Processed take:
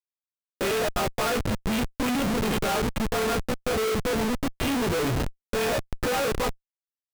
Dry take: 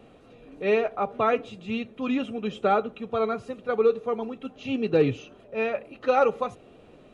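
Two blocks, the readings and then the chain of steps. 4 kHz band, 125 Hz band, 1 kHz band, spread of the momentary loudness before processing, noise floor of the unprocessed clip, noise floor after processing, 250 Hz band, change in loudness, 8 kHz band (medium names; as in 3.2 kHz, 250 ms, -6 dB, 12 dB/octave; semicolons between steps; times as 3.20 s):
+10.5 dB, +7.0 dB, -1.5 dB, 10 LU, -53 dBFS, under -85 dBFS, +2.0 dB, 0.0 dB, no reading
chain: partials quantised in pitch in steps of 2 st; Schmitt trigger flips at -34 dBFS; trim +2.5 dB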